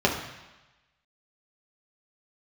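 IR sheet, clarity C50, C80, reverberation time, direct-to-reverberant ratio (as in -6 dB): 6.0 dB, 8.5 dB, 1.1 s, -2.0 dB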